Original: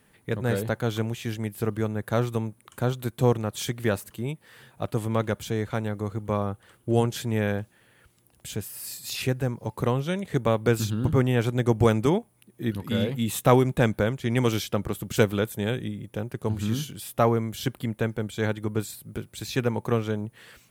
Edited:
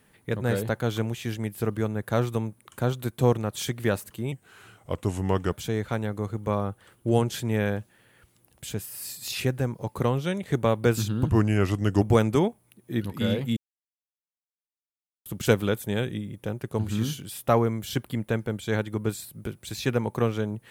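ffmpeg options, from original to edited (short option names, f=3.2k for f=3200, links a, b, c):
-filter_complex "[0:a]asplit=7[a][b][c][d][e][f][g];[a]atrim=end=4.324[h];[b]atrim=start=4.32:end=5.34,asetpts=PTS-STARTPTS,asetrate=37485,aresample=44100[i];[c]atrim=start=5.336:end=11.114[j];[d]atrim=start=11.11:end=11.72,asetpts=PTS-STARTPTS,asetrate=37044,aresample=44100[k];[e]atrim=start=11.716:end=13.27,asetpts=PTS-STARTPTS,afade=t=out:st=1.55:d=0.004:c=hsin[l];[f]atrim=start=13.27:end=14.96,asetpts=PTS-STARTPTS,volume=0[m];[g]atrim=start=14.96,asetpts=PTS-STARTPTS,afade=t=in:d=0.004:c=hsin[n];[h][i]acrossfade=d=0.004:c1=hsin:c2=hsin[o];[o][j]acrossfade=d=0.004:c1=hsin:c2=hsin[p];[p][k]acrossfade=d=0.004:c1=hsin:c2=hsin[q];[l][m][n]concat=n=3:v=0:a=1[r];[q][r]acrossfade=d=0.004:c1=hsin:c2=hsin"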